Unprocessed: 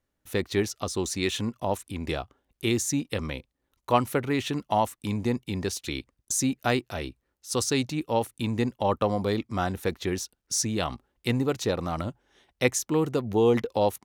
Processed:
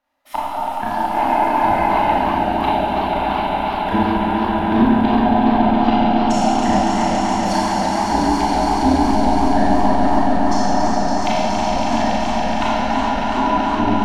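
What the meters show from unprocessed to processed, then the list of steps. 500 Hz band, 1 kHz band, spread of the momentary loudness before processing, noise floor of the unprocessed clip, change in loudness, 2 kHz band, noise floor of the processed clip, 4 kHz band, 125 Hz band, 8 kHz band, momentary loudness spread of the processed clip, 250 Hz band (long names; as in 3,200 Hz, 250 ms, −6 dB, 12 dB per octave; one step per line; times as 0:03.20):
+6.5 dB, +17.0 dB, 9 LU, −81 dBFS, +10.5 dB, +9.5 dB, −23 dBFS, +6.0 dB, +4.5 dB, −2.0 dB, 5 LU, +12.0 dB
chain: neighbouring bands swapped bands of 500 Hz
octave-band graphic EQ 125/250/500/1,000/2,000/4,000/8,000 Hz −8/+6/−8/+9/+5/+5/−6 dB
treble cut that deepens with the level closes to 440 Hz, closed at −19.5 dBFS
on a send: echo that builds up and dies away 140 ms, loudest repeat 5, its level −6 dB
on the sum: healed spectral selection 0:01.16–0:02.05, 220–2,600 Hz after
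parametric band 270 Hz +9 dB 0.5 octaves
four-comb reverb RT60 1.8 s, combs from 27 ms, DRR −6 dB
feedback echo with a swinging delay time 329 ms, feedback 57%, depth 179 cents, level −9 dB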